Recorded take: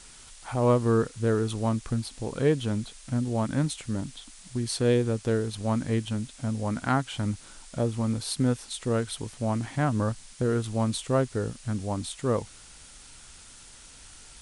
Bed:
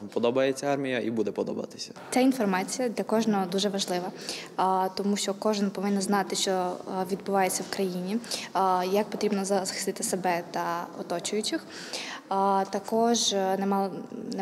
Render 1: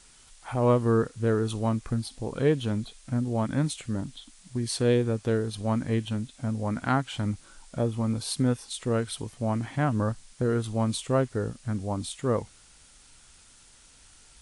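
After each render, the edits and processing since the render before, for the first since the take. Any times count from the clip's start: noise print and reduce 6 dB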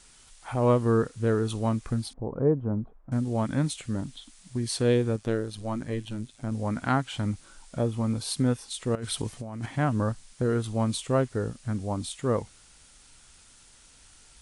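2.13–3.12 LPF 1100 Hz 24 dB/oct; 5.16–6.52 AM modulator 110 Hz, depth 55%; 8.95–9.66 negative-ratio compressor -34 dBFS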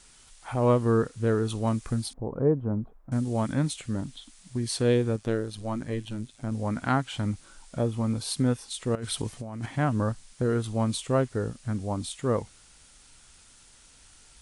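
1.67–3.53 high shelf 5400 Hz +6 dB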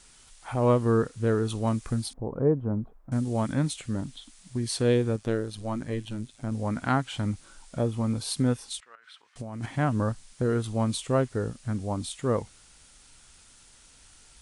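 8.8–9.36 ladder band-pass 1800 Hz, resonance 40%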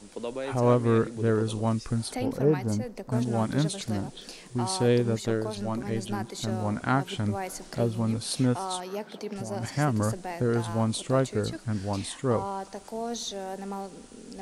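add bed -9.5 dB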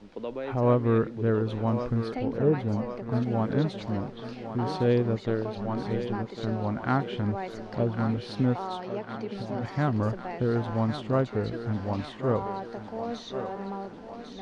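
air absorption 260 m; thinning echo 1.101 s, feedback 63%, high-pass 270 Hz, level -8.5 dB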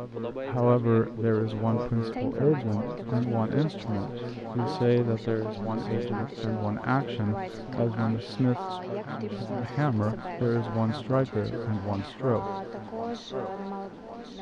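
reverse echo 0.717 s -15 dB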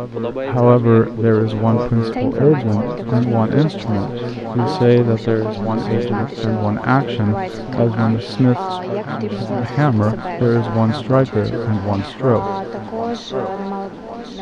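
gain +11 dB; limiter -1 dBFS, peak gain reduction 1 dB

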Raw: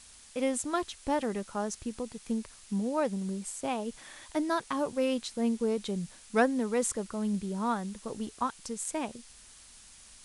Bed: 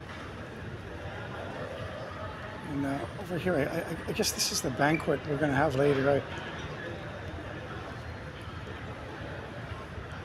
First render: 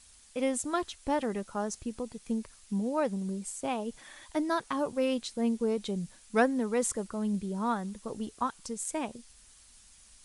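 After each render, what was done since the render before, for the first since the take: denoiser 6 dB, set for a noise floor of -54 dBFS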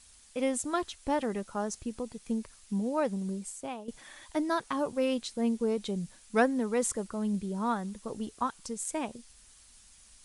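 3.33–3.88 fade out, to -11.5 dB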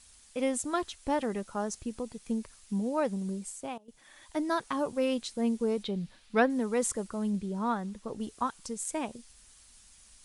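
3.78–4.5 fade in, from -20 dB; 5.83–6.5 resonant high shelf 5300 Hz -9.5 dB, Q 1.5; 7.29–8.19 high shelf 10000 Hz -> 6400 Hz -10.5 dB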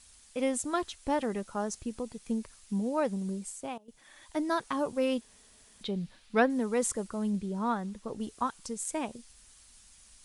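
5.21–5.81 room tone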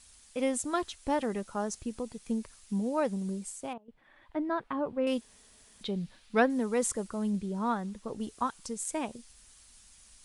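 3.73–5.07 air absorption 490 m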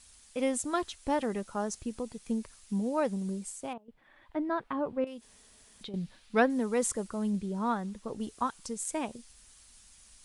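5.04–5.94 compressor 10:1, threshold -39 dBFS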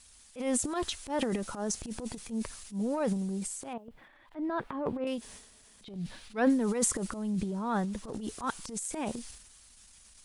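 transient shaper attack -12 dB, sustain +10 dB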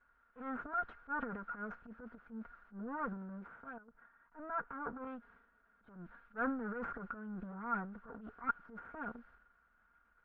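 minimum comb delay 4.3 ms; ladder low-pass 1500 Hz, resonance 85%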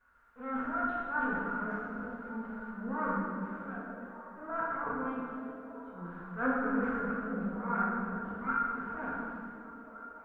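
on a send: delay with a stepping band-pass 0.293 s, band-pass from 190 Hz, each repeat 0.7 oct, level -4.5 dB; on the sum: plate-style reverb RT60 2 s, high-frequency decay 0.9×, DRR -7 dB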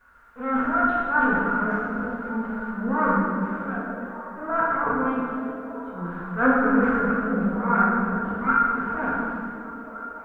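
gain +11.5 dB

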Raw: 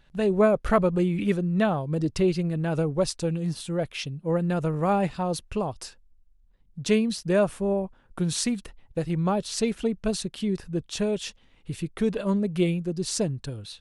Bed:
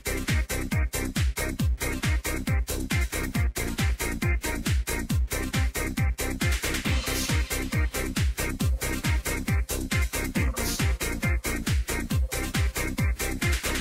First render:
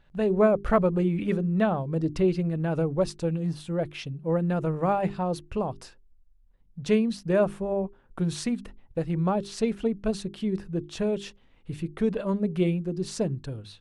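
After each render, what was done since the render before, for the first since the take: high shelf 3200 Hz -11 dB; notches 50/100/150/200/250/300/350/400 Hz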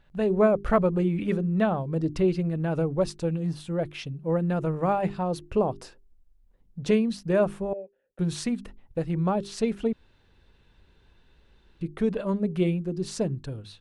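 5.41–6.91 bell 410 Hz +6.5 dB 1.8 oct; 7.73–8.19 vowel filter e; 9.93–11.81 room tone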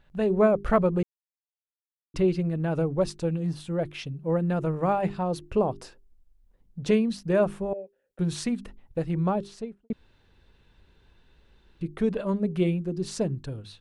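1.03–2.14 mute; 9.24–9.9 studio fade out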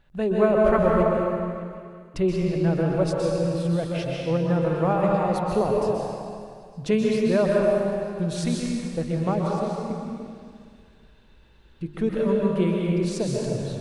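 on a send: delay with a stepping band-pass 0.151 s, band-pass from 560 Hz, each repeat 0.7 oct, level -8 dB; on the sum: plate-style reverb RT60 2.1 s, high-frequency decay 0.9×, pre-delay 0.115 s, DRR -2 dB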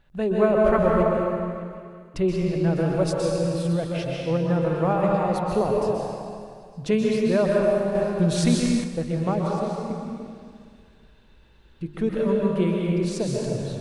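2.76–3.73 high shelf 5000 Hz +6.5 dB; 7.95–8.84 gain +5.5 dB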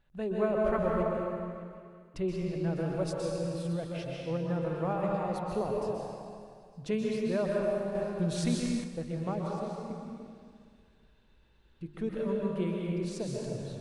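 gain -9.5 dB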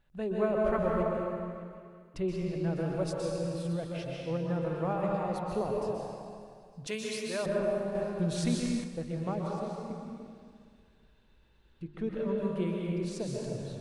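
6.87–7.46 tilt +4 dB/oct; 11.84–12.38 air absorption 73 m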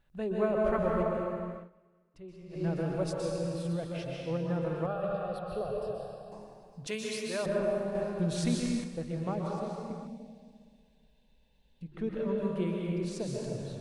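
1.55–2.64 dip -15.5 dB, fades 0.15 s; 4.86–6.32 fixed phaser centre 1400 Hz, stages 8; 10.07–11.92 fixed phaser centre 350 Hz, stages 6

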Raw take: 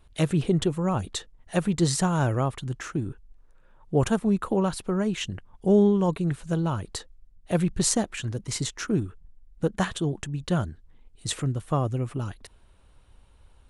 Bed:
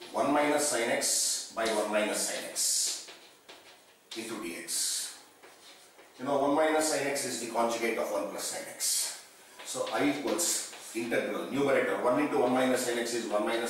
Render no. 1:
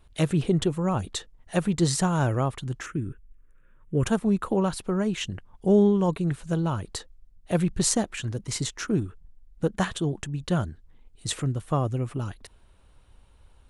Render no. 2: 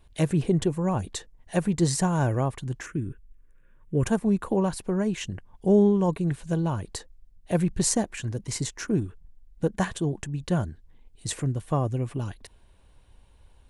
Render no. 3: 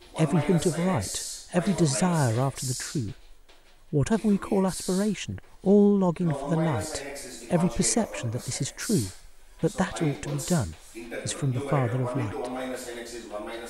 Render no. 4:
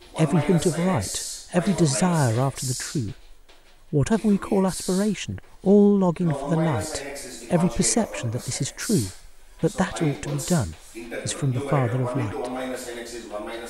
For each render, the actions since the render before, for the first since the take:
2.86–4.05 fixed phaser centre 1900 Hz, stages 4
notch 1300 Hz, Q 6.3; dynamic EQ 3400 Hz, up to -6 dB, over -50 dBFS, Q 1.8
add bed -6 dB
gain +3 dB

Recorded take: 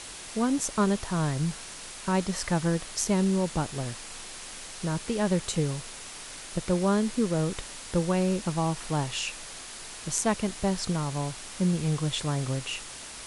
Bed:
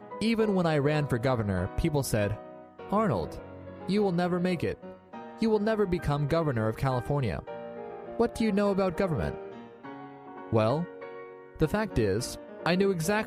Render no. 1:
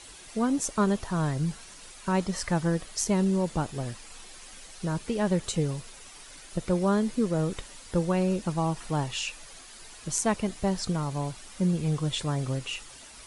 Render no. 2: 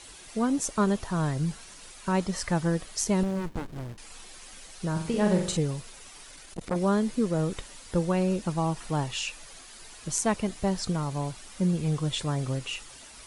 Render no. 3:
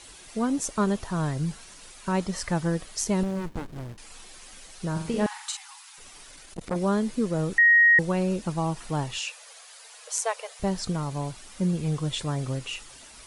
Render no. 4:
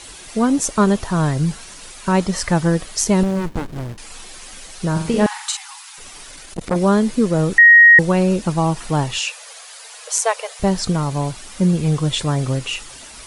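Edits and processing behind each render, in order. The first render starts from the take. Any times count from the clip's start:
denoiser 9 dB, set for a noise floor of -42 dBFS
3.23–3.98 running maximum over 65 samples; 4.92–5.57 flutter echo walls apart 7.4 m, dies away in 0.54 s; 6.31–6.76 core saturation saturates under 680 Hz
5.26–5.98 brick-wall FIR high-pass 750 Hz; 7.58–7.99 bleep 1880 Hz -13.5 dBFS; 9.18–10.6 brick-wall FIR high-pass 430 Hz
gain +9.5 dB; limiter -1 dBFS, peak gain reduction 1 dB

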